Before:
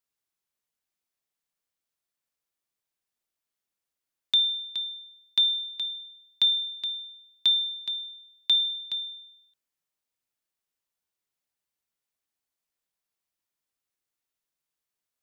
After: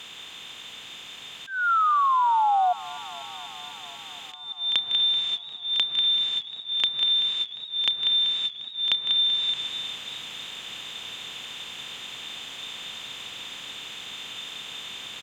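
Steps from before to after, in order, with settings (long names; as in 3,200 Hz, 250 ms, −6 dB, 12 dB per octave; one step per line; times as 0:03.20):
compressor on every frequency bin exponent 0.4
low-shelf EQ 450 Hz +9 dB
convolution reverb RT60 3.6 s, pre-delay 3 ms, DRR 12.5 dB
in parallel at −0.5 dB: speech leveller 0.5 s
on the sum: treble cut that deepens with the level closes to 1,200 Hz, closed at −12.5 dBFS
spectral tilt +2 dB per octave
repeating echo 192 ms, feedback 56%, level −11 dB
sound drawn into the spectrogram fall, 0:01.47–0:02.73, 710–1,600 Hz −17 dBFS
downward compressor 4 to 1, threshold −23 dBFS, peak gain reduction 10 dB
volume swells 246 ms
feedback echo with a swinging delay time 245 ms, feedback 78%, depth 93 cents, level −20 dB
level +2.5 dB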